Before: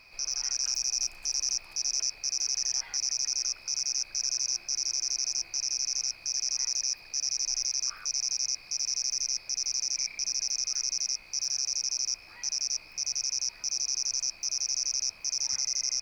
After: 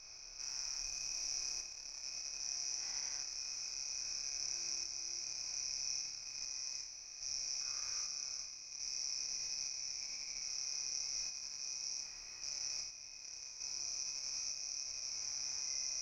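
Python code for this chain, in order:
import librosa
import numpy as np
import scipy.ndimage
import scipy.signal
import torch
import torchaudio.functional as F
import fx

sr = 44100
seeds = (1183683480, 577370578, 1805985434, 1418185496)

y = fx.spec_steps(x, sr, hold_ms=400)
y = fx.level_steps(y, sr, step_db=9)
y = fx.high_shelf(y, sr, hz=4500.0, db=-6.5)
y = fx.room_flutter(y, sr, wall_m=4.9, rt60_s=0.5)
y = fx.tremolo_shape(y, sr, shape='saw_up', hz=0.62, depth_pct=35)
y = F.gain(torch.from_numpy(y), -3.0).numpy()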